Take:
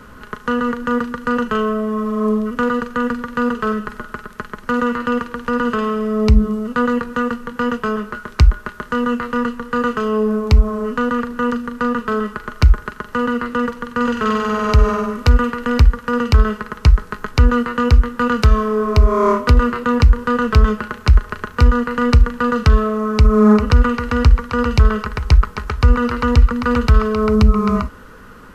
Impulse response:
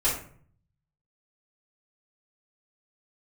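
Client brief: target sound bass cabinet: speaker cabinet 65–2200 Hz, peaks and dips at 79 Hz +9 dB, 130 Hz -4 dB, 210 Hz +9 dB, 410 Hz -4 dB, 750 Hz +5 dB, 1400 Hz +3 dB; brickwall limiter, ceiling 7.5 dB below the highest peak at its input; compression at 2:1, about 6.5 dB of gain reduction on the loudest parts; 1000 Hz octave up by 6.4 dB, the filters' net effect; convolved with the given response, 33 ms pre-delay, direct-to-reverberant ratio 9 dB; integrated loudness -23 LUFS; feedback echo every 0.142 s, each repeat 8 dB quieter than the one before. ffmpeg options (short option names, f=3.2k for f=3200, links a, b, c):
-filter_complex "[0:a]equalizer=f=1k:t=o:g=6,acompressor=threshold=-17dB:ratio=2,alimiter=limit=-9.5dB:level=0:latency=1,aecho=1:1:142|284|426|568|710:0.398|0.159|0.0637|0.0255|0.0102,asplit=2[a][b];[1:a]atrim=start_sample=2205,adelay=33[c];[b][c]afir=irnorm=-1:irlink=0,volume=-20dB[d];[a][d]amix=inputs=2:normalize=0,highpass=f=65:w=0.5412,highpass=f=65:w=1.3066,equalizer=f=79:t=q:w=4:g=9,equalizer=f=130:t=q:w=4:g=-4,equalizer=f=210:t=q:w=4:g=9,equalizer=f=410:t=q:w=4:g=-4,equalizer=f=750:t=q:w=4:g=5,equalizer=f=1.4k:t=q:w=4:g=3,lowpass=f=2.2k:w=0.5412,lowpass=f=2.2k:w=1.3066,volume=-6dB"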